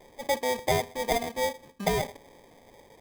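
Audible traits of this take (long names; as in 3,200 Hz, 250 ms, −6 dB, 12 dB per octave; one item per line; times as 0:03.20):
aliases and images of a low sample rate 1,400 Hz, jitter 0%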